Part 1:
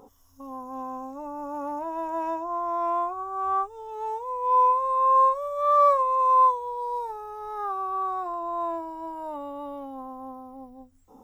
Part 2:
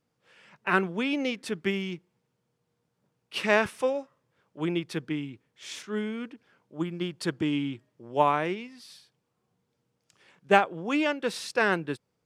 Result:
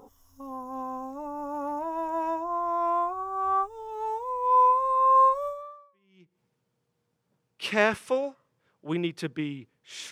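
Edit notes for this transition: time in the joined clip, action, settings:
part 1
5.94 switch to part 2 from 1.66 s, crossfade 0.90 s exponential

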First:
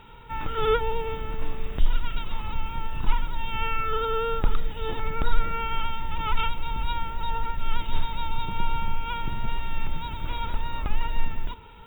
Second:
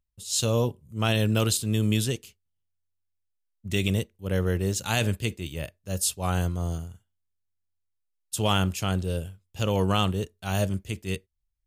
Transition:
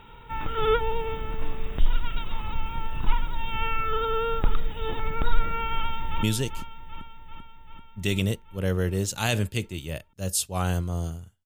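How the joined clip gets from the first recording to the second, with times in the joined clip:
first
5.75–6.23 echo throw 0.39 s, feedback 70%, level -9.5 dB
6.23 switch to second from 1.91 s

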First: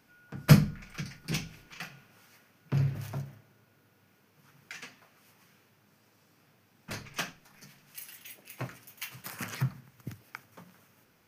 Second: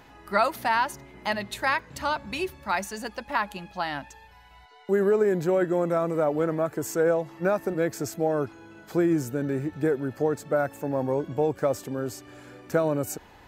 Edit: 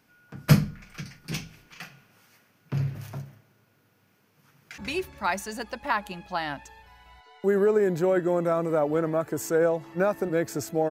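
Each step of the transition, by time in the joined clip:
first
4.52–4.78 echo throw 0.14 s, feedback 50%, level -5 dB
4.78 switch to second from 2.23 s

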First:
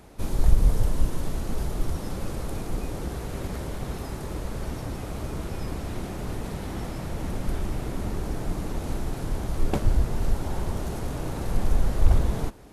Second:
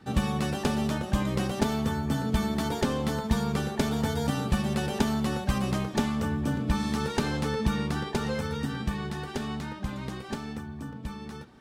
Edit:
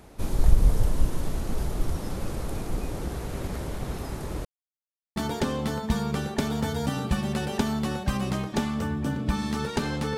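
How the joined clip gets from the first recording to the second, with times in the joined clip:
first
4.45–5.16 mute
5.16 switch to second from 2.57 s

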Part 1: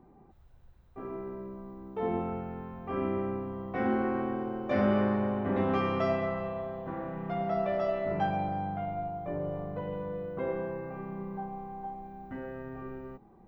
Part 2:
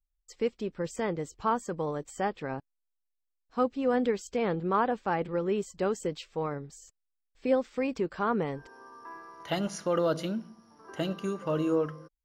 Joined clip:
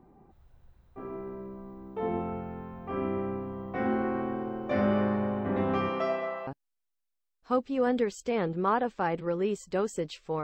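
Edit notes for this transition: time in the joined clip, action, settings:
part 1
5.88–6.47 HPF 210 Hz -> 610 Hz
6.47 switch to part 2 from 2.54 s

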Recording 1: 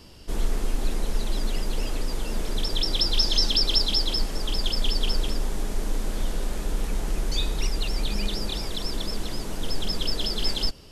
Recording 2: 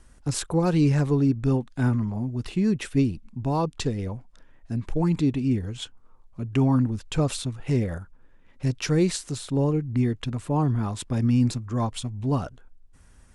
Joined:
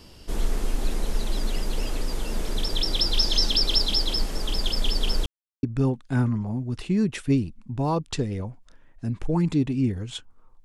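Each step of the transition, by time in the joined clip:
recording 1
5.26–5.63 mute
5.63 switch to recording 2 from 1.3 s

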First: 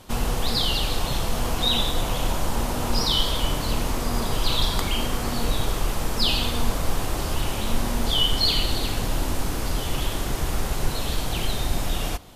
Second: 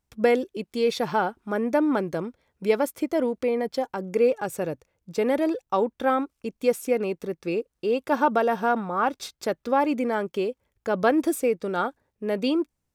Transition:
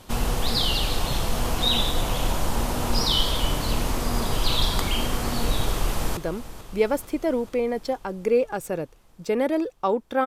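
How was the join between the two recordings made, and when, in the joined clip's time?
first
5.71–6.17 echo throw 0.44 s, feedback 70%, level -13.5 dB
6.17 switch to second from 2.06 s

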